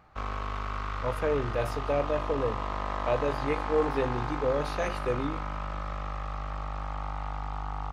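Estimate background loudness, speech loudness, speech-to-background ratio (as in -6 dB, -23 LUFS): -35.0 LUFS, -31.0 LUFS, 4.0 dB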